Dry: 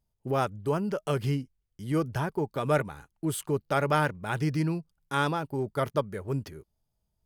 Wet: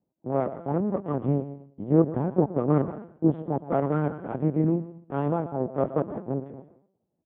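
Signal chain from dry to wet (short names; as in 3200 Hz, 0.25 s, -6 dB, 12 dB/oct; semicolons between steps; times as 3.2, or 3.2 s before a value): minimum comb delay 5.9 ms; 1.21–3.42 low shelf 310 Hz +5.5 dB; plate-style reverb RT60 0.56 s, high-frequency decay 1×, pre-delay 0.1 s, DRR 12 dB; LPC vocoder at 8 kHz pitch kept; Butterworth band-pass 330 Hz, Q 0.61; gain +9 dB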